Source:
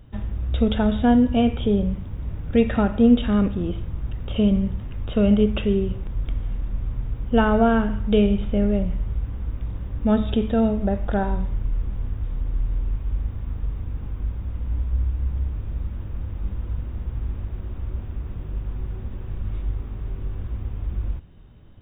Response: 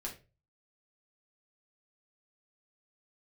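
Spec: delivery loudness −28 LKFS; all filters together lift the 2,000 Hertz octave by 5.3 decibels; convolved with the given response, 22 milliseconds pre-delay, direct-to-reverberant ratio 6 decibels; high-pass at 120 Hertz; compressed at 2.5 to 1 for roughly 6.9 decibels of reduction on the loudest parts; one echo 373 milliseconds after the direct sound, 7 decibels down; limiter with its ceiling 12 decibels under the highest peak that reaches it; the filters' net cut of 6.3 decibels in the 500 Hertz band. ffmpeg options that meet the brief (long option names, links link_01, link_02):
-filter_complex "[0:a]highpass=120,equalizer=frequency=500:width_type=o:gain=-8.5,equalizer=frequency=2000:width_type=o:gain=8.5,acompressor=threshold=-24dB:ratio=2.5,alimiter=level_in=2dB:limit=-24dB:level=0:latency=1,volume=-2dB,aecho=1:1:373:0.447,asplit=2[link_01][link_02];[1:a]atrim=start_sample=2205,adelay=22[link_03];[link_02][link_03]afir=irnorm=-1:irlink=0,volume=-5.5dB[link_04];[link_01][link_04]amix=inputs=2:normalize=0,volume=7dB"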